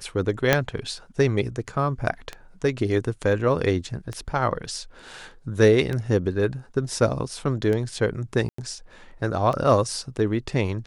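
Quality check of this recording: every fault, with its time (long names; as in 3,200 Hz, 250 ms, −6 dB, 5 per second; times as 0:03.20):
scratch tick 33 1/3 rpm
0:00.53: click −4 dBFS
0:08.49–0:08.58: drop-out 94 ms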